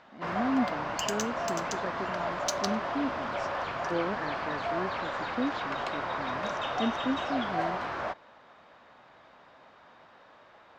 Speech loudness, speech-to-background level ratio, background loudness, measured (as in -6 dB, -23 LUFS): -36.0 LUFS, -3.0 dB, -33.0 LUFS